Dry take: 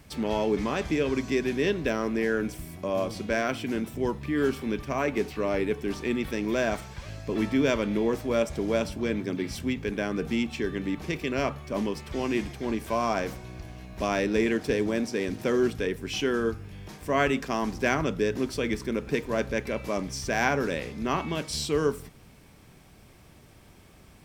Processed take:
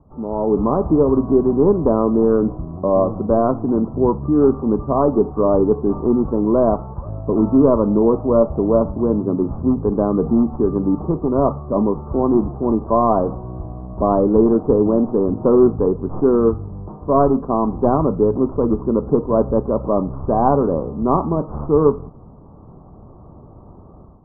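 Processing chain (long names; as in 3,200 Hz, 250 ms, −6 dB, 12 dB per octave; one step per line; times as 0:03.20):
stylus tracing distortion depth 0.35 ms
Butterworth low-pass 1,200 Hz 72 dB per octave
automatic gain control gain up to 11.5 dB
level +1 dB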